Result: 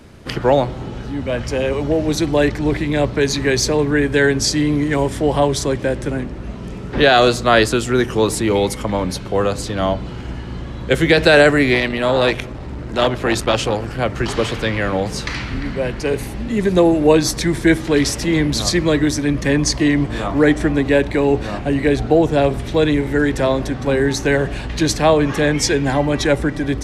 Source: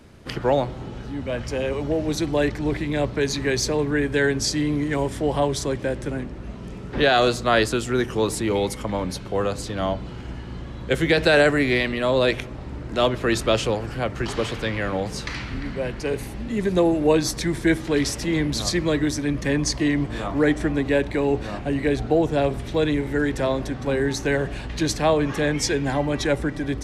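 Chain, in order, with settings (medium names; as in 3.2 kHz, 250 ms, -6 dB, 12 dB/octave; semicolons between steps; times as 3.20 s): 11.74–13.99 s: transformer saturation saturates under 730 Hz; trim +6 dB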